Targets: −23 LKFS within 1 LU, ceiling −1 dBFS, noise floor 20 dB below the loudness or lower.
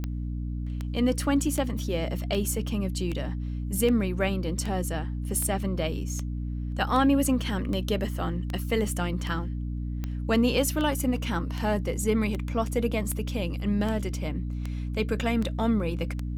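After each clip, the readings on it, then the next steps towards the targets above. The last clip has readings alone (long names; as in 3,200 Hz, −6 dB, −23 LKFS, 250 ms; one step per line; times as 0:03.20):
number of clicks 22; mains hum 60 Hz; hum harmonics up to 300 Hz; level of the hum −29 dBFS; integrated loudness −28.0 LKFS; sample peak −12.5 dBFS; target loudness −23.0 LKFS
→ click removal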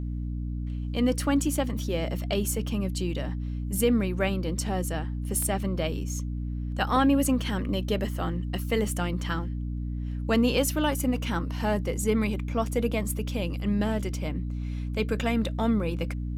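number of clicks 1; mains hum 60 Hz; hum harmonics up to 300 Hz; level of the hum −29 dBFS
→ mains-hum notches 60/120/180/240/300 Hz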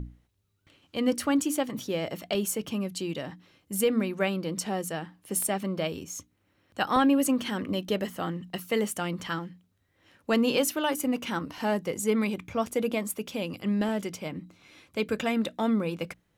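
mains hum none found; integrated loudness −29.0 LKFS; sample peak −13.5 dBFS; target loudness −23.0 LKFS
→ level +6 dB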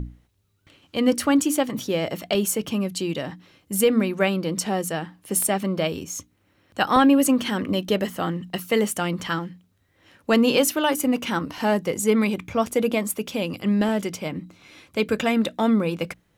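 integrated loudness −23.0 LKFS; sample peak −7.5 dBFS; background noise floor −65 dBFS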